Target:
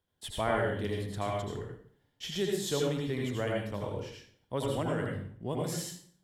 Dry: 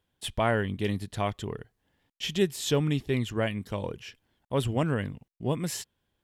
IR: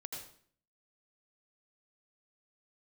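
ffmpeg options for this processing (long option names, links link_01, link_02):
-filter_complex "[1:a]atrim=start_sample=2205[link_01];[0:a][link_01]afir=irnorm=-1:irlink=0,acrossover=split=340|4400[link_02][link_03][link_04];[link_02]alimiter=level_in=6.5dB:limit=-24dB:level=0:latency=1,volume=-6.5dB[link_05];[link_03]equalizer=frequency=2600:width=3.6:gain=-7.5[link_06];[link_05][link_06][link_04]amix=inputs=3:normalize=0"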